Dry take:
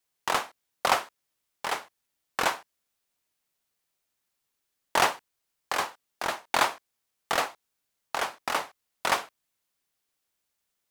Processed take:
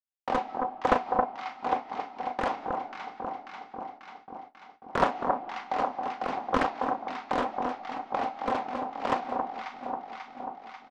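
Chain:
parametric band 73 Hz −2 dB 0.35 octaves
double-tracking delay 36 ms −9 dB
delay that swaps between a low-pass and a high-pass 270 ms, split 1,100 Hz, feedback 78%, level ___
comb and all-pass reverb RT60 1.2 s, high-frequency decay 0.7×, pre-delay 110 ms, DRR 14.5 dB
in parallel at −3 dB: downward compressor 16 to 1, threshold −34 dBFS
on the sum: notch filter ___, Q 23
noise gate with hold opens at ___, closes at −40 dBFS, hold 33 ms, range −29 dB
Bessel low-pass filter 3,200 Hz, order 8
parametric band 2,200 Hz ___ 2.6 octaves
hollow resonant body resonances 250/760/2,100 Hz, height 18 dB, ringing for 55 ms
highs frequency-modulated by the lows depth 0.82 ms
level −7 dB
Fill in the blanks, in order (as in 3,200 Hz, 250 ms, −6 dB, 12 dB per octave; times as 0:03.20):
−4 dB, 2,100 Hz, −38 dBFS, −6.5 dB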